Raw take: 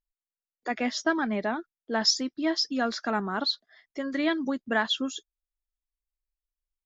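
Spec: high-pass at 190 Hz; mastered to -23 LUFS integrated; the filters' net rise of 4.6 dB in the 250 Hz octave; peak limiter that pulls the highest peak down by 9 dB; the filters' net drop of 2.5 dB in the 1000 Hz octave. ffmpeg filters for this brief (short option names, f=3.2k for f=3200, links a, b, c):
-af "highpass=190,equalizer=f=250:t=o:g=7,equalizer=f=1k:t=o:g=-4,volume=6dB,alimiter=limit=-13.5dB:level=0:latency=1"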